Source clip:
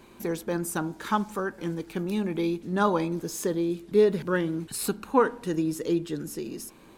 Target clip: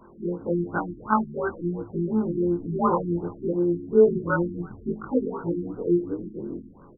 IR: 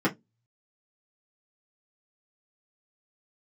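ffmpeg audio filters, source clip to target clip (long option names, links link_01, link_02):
-filter_complex "[0:a]afftfilt=real='re':imag='-im':win_size=2048:overlap=0.75,crystalizer=i=7:c=0,asplit=2[link_01][link_02];[link_02]asplit=5[link_03][link_04][link_05][link_06][link_07];[link_03]adelay=154,afreqshift=-71,volume=-18.5dB[link_08];[link_04]adelay=308,afreqshift=-142,volume=-23.4dB[link_09];[link_05]adelay=462,afreqshift=-213,volume=-28.3dB[link_10];[link_06]adelay=616,afreqshift=-284,volume=-33.1dB[link_11];[link_07]adelay=770,afreqshift=-355,volume=-38dB[link_12];[link_08][link_09][link_10][link_11][link_12]amix=inputs=5:normalize=0[link_13];[link_01][link_13]amix=inputs=2:normalize=0,afftfilt=real='re*lt(b*sr/1024,390*pow(1600/390,0.5+0.5*sin(2*PI*2.8*pts/sr)))':imag='im*lt(b*sr/1024,390*pow(1600/390,0.5+0.5*sin(2*PI*2.8*pts/sr)))':win_size=1024:overlap=0.75,volume=5.5dB"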